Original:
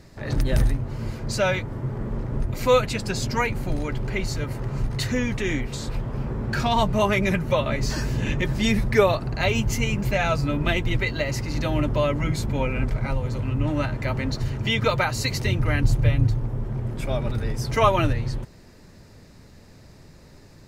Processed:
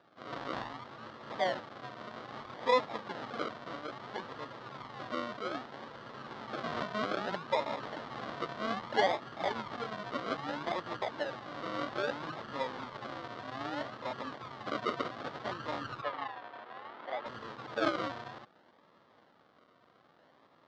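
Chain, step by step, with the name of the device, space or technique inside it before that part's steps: circuit-bent sampling toy (decimation with a swept rate 41×, swing 60% 0.62 Hz; speaker cabinet 400–4200 Hz, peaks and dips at 400 Hz -5 dB, 1200 Hz +5 dB, 2500 Hz -8 dB); 16.02–17.26 three-band isolator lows -18 dB, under 290 Hz, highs -21 dB, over 3700 Hz; gain -7.5 dB

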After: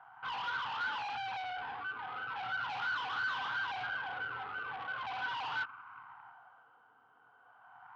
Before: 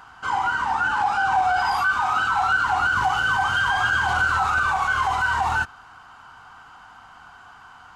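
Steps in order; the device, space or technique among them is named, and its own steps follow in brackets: wah-wah guitar rig (wah 0.39 Hz 420–1100 Hz, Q 4; tube stage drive 38 dB, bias 0.55; speaker cabinet 110–4500 Hz, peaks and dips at 120 Hz +9 dB, 190 Hz -6 dB, 370 Hz -8 dB, 590 Hz -6 dB, 1500 Hz +7 dB, 3100 Hz +6 dB)

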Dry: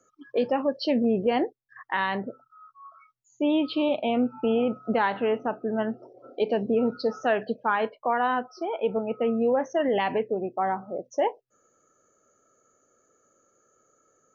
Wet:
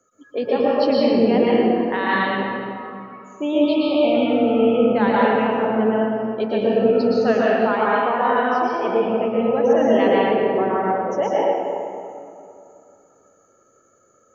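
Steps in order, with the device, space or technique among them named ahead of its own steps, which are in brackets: stairwell (reverb RT60 2.5 s, pre-delay 0.108 s, DRR -7 dB); 2.09–3.45 bell 4900 Hz +4.5 dB 1.3 oct

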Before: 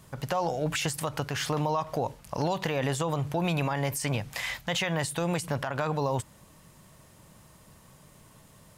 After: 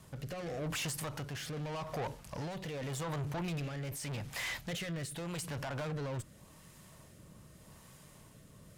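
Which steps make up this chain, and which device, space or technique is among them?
overdriven rotary cabinet (tube stage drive 35 dB, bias 0.25; rotary speaker horn 0.85 Hz); gain +1 dB

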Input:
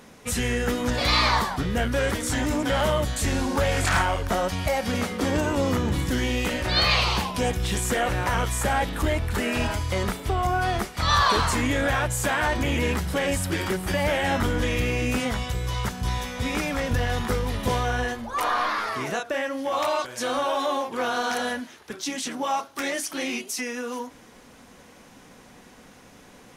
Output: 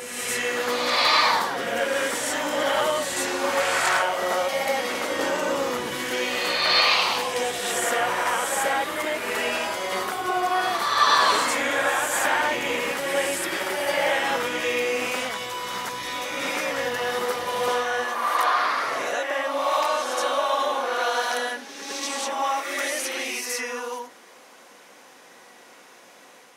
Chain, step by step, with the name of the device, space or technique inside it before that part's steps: ghost voice (reverse; reverb RT60 1.6 s, pre-delay 57 ms, DRR -1 dB; reverse; HPF 490 Hz 12 dB/oct)

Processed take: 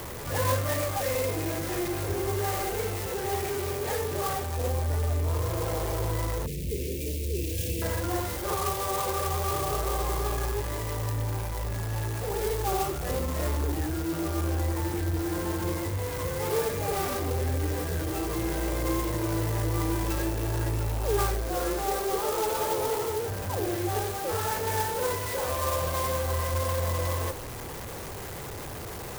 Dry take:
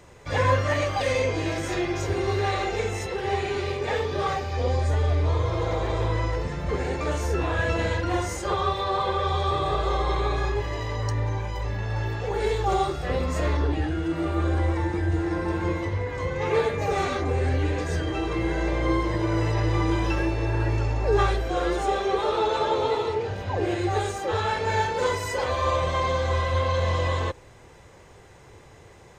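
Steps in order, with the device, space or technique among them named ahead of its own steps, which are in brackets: early CD player with a faulty converter (zero-crossing step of -26 dBFS; clock jitter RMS 0.08 ms); 6.46–7.82 elliptic band-stop 450–2400 Hz, stop band 80 dB; gain -6.5 dB

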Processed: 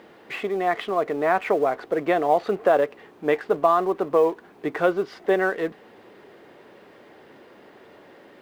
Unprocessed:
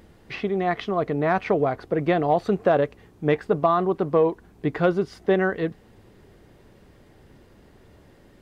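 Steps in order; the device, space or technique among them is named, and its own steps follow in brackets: phone line with mismatched companding (BPF 370–3300 Hz; G.711 law mismatch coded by mu); gain +1.5 dB

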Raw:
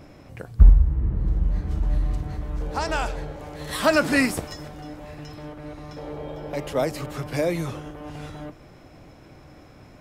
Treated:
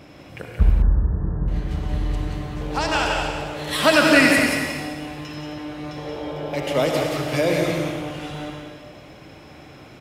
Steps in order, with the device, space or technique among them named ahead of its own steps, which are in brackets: PA in a hall (HPF 110 Hz 6 dB/oct; bell 3000 Hz +7 dB 0.97 oct; echo 0.179 s -6 dB; reverb RT60 1.6 s, pre-delay 59 ms, DRR 1.5 dB); 0.82–1.48 steep low-pass 1800 Hz 96 dB/oct; gain +2 dB

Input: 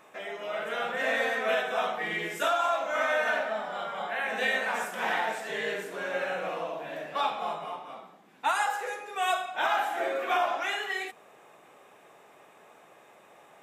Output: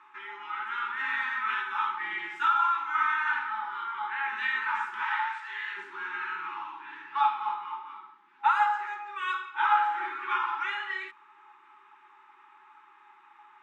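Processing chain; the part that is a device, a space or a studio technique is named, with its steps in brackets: 5.03–5.77 HPF 890 Hz 12 dB/oct; FFT band-reject 400–820 Hz; tin-can telephone (BPF 620–2500 Hz; small resonant body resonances 830/1300 Hz, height 9 dB, ringing for 25 ms)

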